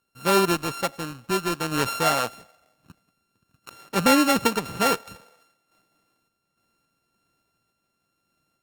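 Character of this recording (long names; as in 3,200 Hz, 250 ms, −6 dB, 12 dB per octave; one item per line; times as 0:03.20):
a buzz of ramps at a fixed pitch in blocks of 32 samples
sample-and-hold tremolo
Opus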